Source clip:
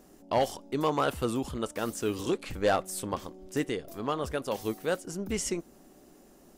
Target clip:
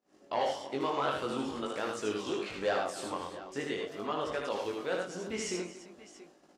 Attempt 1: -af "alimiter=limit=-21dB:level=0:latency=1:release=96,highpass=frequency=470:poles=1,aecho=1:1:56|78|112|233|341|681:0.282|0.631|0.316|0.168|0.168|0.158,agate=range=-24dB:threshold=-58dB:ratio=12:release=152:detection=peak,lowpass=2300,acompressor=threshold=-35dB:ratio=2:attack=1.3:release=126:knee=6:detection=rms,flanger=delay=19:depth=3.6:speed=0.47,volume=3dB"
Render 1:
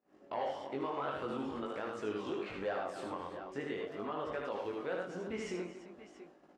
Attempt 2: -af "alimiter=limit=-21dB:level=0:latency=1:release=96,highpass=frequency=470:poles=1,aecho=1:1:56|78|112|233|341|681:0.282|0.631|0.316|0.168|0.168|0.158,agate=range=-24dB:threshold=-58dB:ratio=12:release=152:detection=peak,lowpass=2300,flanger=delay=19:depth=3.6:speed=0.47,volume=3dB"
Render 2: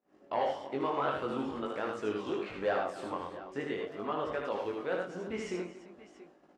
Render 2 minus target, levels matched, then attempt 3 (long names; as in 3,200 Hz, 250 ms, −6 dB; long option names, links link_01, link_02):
4,000 Hz band −6.5 dB
-af "alimiter=limit=-21dB:level=0:latency=1:release=96,highpass=frequency=470:poles=1,aecho=1:1:56|78|112|233|341|681:0.282|0.631|0.316|0.168|0.168|0.158,agate=range=-24dB:threshold=-58dB:ratio=12:release=152:detection=peak,lowpass=5100,flanger=delay=19:depth=3.6:speed=0.47,volume=3dB"